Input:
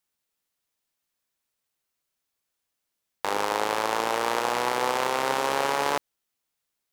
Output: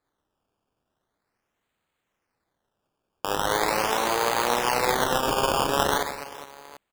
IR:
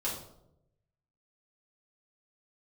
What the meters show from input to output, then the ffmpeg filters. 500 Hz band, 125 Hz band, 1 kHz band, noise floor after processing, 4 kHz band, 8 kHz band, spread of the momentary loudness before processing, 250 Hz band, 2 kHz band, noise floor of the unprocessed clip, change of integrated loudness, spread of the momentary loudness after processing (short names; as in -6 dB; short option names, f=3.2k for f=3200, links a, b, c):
+2.0 dB, +9.0 dB, +1.5 dB, -81 dBFS, +4.0 dB, +5.0 dB, 3 LU, +4.0 dB, +1.5 dB, -82 dBFS, +2.0 dB, 13 LU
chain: -af "aecho=1:1:50|130|258|462.8|790.5:0.631|0.398|0.251|0.158|0.1,acrusher=samples=15:mix=1:aa=0.000001:lfo=1:lforange=15:lforate=0.41"